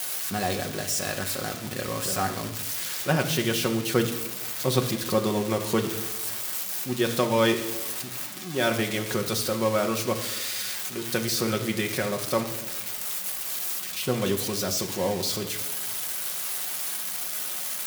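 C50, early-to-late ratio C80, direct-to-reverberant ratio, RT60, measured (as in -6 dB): 10.0 dB, 12.5 dB, 3.0 dB, 1.0 s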